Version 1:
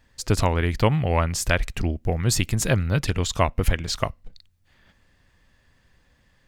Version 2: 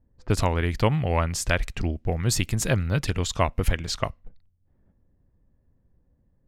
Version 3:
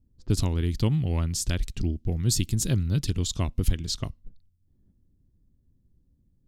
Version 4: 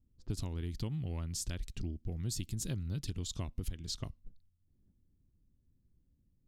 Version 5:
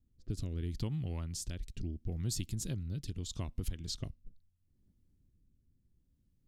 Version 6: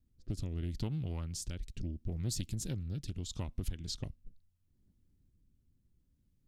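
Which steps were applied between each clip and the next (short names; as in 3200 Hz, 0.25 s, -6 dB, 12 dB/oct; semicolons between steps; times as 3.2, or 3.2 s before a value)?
low-pass opened by the level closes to 410 Hz, open at -21 dBFS; gain -2 dB
band shelf 1100 Hz -14 dB 2.7 oct
compressor 4:1, threshold -27 dBFS, peak gain reduction 10.5 dB; gain -7 dB
rotary speaker horn 0.75 Hz; gain +1.5 dB
Doppler distortion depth 0.39 ms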